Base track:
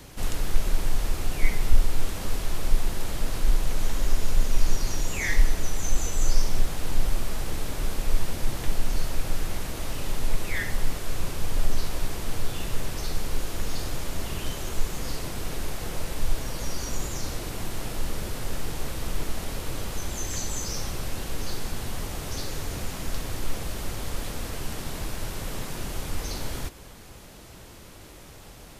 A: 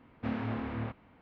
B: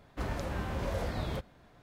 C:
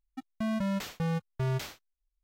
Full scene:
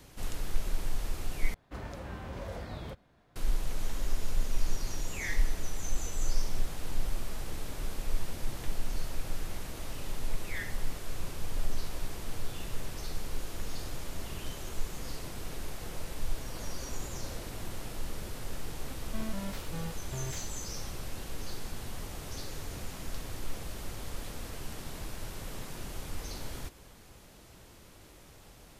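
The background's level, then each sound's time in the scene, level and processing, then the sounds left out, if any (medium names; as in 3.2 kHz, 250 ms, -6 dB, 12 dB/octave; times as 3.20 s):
base track -8 dB
1.54 s: replace with B -6 dB
16.36 s: add B -13.5 dB + gain riding
18.73 s: add C -10.5 dB + companding laws mixed up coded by mu
not used: A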